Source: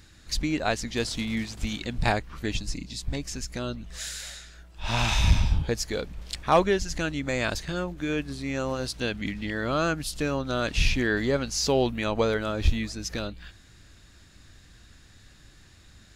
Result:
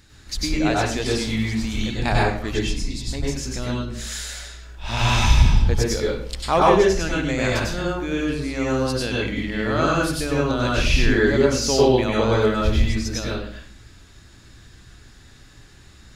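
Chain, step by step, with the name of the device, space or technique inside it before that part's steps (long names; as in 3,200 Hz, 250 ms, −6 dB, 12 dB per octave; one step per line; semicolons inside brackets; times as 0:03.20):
mains-hum notches 50/100/150 Hz
bathroom (convolution reverb RT60 0.55 s, pre-delay 91 ms, DRR −4.5 dB)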